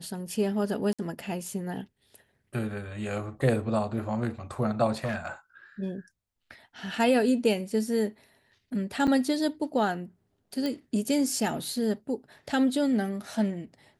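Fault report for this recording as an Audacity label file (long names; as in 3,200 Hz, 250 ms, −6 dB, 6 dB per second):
0.930000	0.990000	drop-out 56 ms
5.040000	5.280000	clipping −26 dBFS
9.070000	9.080000	drop-out 6.7 ms
10.660000	10.660000	click −18 dBFS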